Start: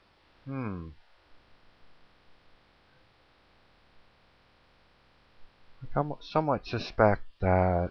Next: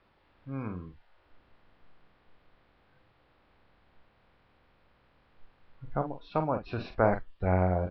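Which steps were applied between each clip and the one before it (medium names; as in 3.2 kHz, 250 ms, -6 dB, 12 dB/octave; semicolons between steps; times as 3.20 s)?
distance through air 260 m; doubling 44 ms -8.5 dB; trim -2 dB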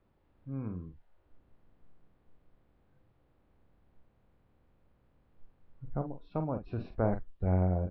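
tilt shelf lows +8 dB, about 680 Hz; trim -7.5 dB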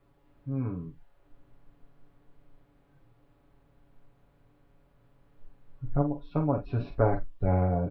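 comb 7.1 ms, depth 89%; reverberation, pre-delay 7 ms, DRR 12 dB; trim +3.5 dB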